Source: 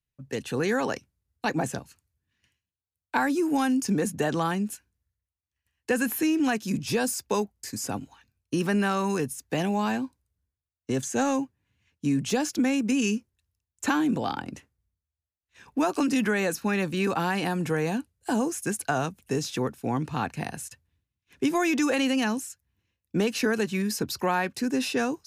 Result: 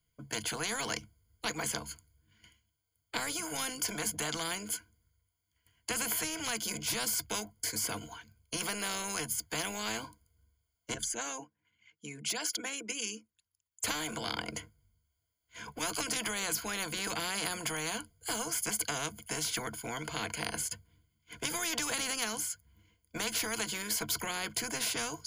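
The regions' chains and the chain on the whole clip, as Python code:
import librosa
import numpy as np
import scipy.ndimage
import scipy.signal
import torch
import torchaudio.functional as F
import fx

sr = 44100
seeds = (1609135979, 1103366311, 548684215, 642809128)

y = fx.chain(x, sr, fx.envelope_sharpen(power=1.5),
    fx.highpass(hz=1200.0, slope=6), at=(10.94, 13.84))
y = fx.ripple_eq(y, sr, per_octave=1.8, db=17)
y = fx.spectral_comp(y, sr, ratio=4.0)
y = y * librosa.db_to_amplitude(-8.0)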